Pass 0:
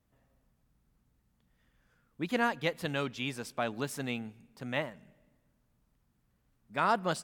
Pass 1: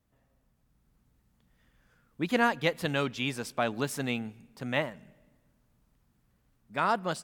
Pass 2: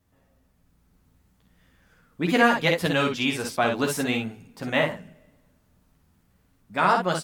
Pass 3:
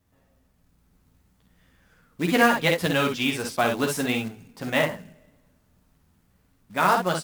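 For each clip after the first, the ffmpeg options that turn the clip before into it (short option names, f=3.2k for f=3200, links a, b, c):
-af "dynaudnorm=f=220:g=7:m=4dB"
-af "aecho=1:1:11|51|63:0.596|0.447|0.531,volume=4.5dB"
-af "acrusher=bits=4:mode=log:mix=0:aa=0.000001"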